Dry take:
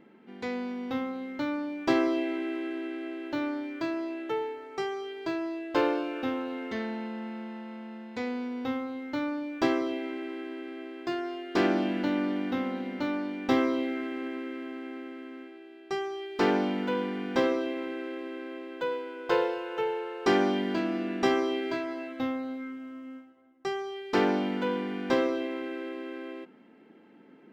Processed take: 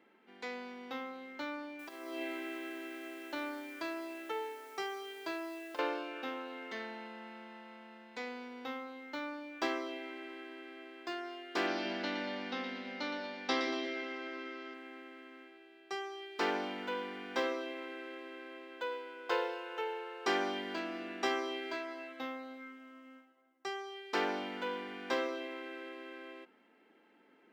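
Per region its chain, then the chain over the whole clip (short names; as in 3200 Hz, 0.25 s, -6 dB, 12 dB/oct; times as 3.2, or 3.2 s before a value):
1.79–5.79 negative-ratio compressor -29 dBFS, ratio -0.5 + requantised 10-bit, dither triangular
11.67–14.74 synth low-pass 5100 Hz, resonance Q 2.7 + split-band echo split 580 Hz, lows 0.178 s, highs 0.117 s, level -7.5 dB
whole clip: Bessel high-pass 280 Hz, order 2; low shelf 480 Hz -10 dB; gain -3 dB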